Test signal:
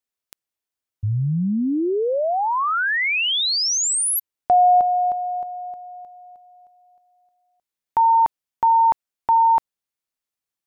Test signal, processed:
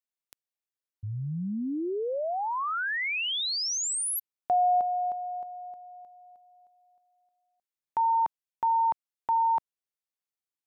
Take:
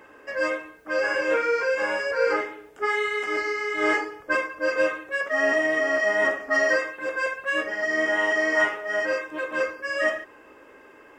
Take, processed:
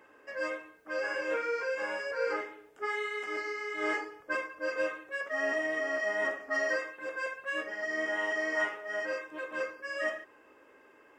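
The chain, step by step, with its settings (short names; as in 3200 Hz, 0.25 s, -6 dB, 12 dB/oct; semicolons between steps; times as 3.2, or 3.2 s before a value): low shelf 90 Hz -8.5 dB; gain -9 dB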